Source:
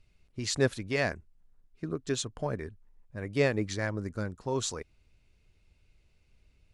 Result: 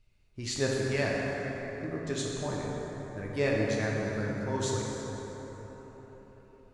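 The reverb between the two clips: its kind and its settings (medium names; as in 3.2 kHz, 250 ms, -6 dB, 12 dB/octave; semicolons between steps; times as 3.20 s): plate-style reverb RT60 4.8 s, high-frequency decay 0.45×, DRR -4 dB; trim -4.5 dB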